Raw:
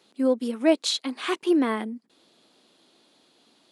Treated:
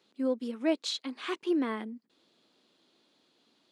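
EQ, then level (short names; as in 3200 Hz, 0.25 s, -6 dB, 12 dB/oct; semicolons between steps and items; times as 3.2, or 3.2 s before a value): bell 730 Hz -3 dB 0.6 oct; bell 10000 Hz -9.5 dB 0.66 oct; -7.0 dB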